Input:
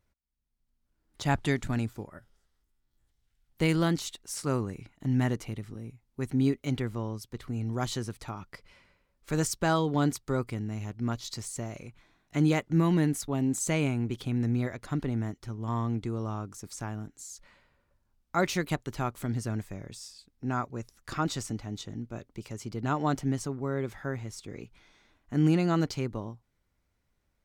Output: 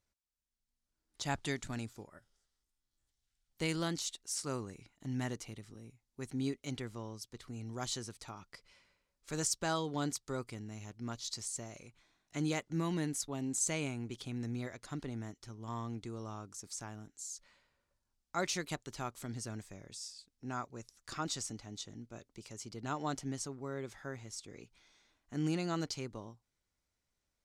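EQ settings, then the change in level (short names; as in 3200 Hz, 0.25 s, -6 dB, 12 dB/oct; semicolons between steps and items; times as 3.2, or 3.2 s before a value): air absorption 59 m; tone controls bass -2 dB, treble +14 dB; low shelf 340 Hz -3 dB; -7.5 dB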